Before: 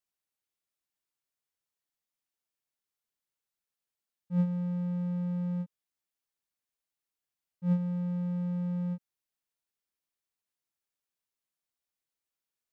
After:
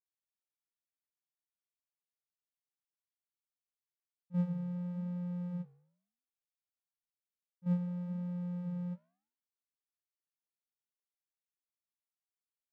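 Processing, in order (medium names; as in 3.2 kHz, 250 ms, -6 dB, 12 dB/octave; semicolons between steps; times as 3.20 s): gate -32 dBFS, range -11 dB; flange 0.96 Hz, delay 9.1 ms, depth 9.3 ms, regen -86%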